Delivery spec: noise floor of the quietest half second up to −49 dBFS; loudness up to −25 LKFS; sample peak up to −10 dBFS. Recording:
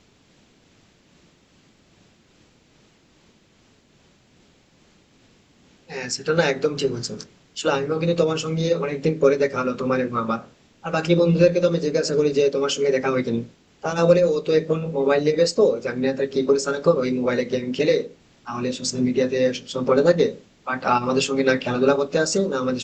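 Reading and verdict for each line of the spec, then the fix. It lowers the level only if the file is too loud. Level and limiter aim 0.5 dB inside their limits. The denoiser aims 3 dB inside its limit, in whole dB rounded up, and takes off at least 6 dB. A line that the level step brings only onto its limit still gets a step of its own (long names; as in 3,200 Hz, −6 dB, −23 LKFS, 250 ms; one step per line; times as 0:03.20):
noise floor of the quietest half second −58 dBFS: in spec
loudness −21.5 LKFS: out of spec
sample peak −4.0 dBFS: out of spec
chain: level −4 dB
brickwall limiter −10.5 dBFS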